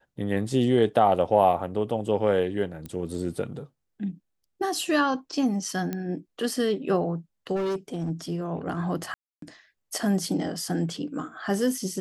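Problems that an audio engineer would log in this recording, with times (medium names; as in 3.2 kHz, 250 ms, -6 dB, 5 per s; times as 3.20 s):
2.86 s: pop -23 dBFS
5.93 s: pop -17 dBFS
7.55–8.11 s: clipped -25 dBFS
9.14–9.42 s: dropout 283 ms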